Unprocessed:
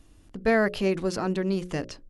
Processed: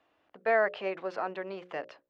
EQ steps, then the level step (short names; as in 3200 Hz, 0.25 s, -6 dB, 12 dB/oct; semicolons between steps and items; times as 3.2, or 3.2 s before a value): BPF 130–4600 Hz; three-band isolator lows -21 dB, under 500 Hz, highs -18 dB, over 3100 Hz; bell 660 Hz +4.5 dB 0.84 oct; -2.0 dB